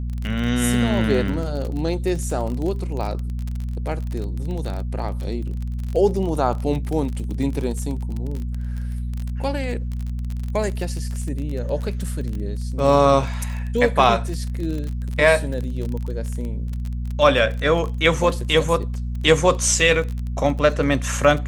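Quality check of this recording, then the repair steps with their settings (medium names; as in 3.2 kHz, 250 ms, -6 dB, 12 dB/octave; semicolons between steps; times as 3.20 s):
crackle 29 per s -26 dBFS
hum 60 Hz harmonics 4 -26 dBFS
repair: de-click; de-hum 60 Hz, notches 4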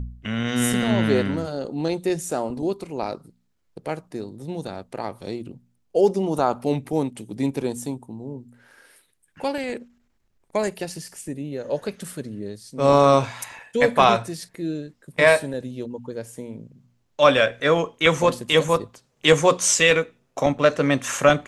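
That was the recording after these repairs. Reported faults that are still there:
nothing left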